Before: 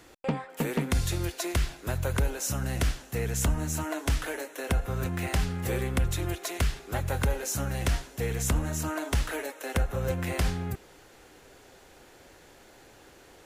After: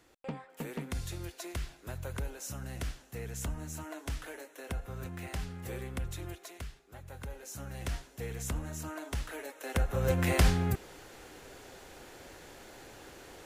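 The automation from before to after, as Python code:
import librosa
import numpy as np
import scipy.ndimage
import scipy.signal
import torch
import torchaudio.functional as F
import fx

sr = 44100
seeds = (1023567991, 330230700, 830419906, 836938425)

y = fx.gain(x, sr, db=fx.line((6.27, -10.5), (6.88, -20.0), (7.92, -9.0), (9.33, -9.0), (10.25, 3.0)))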